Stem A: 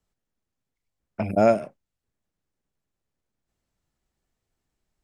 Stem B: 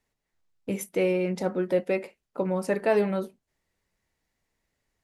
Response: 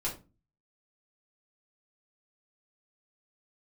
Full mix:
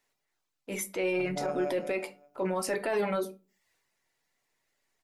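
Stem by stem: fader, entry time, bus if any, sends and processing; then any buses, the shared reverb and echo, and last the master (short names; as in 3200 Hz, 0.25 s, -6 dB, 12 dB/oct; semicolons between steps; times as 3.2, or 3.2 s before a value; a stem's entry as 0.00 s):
-12.5 dB, 0.00 s, send -17 dB, echo send -3.5 dB, robotiser 145 Hz
+2.0 dB, 0.00 s, send -9 dB, no echo send, HPF 680 Hz 6 dB/oct; reverb removal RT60 0.54 s; transient shaper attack -7 dB, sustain +5 dB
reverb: on, RT60 0.30 s, pre-delay 3 ms
echo: feedback echo 0.189 s, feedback 37%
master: limiter -21 dBFS, peak gain reduction 7.5 dB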